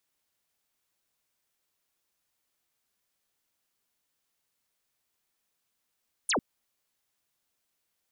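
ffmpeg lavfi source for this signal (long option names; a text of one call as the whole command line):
ffmpeg -f lavfi -i "aevalsrc='0.0631*clip(t/0.002,0,1)*clip((0.1-t)/0.002,0,1)*sin(2*PI*11000*0.1/log(180/11000)*(exp(log(180/11000)*t/0.1)-1))':duration=0.1:sample_rate=44100" out.wav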